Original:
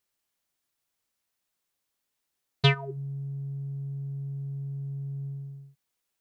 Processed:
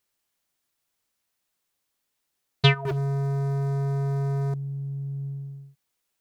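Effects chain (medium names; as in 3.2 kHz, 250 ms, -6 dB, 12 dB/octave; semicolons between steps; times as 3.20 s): 2.85–4.54 s: waveshaping leveller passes 5; trim +3 dB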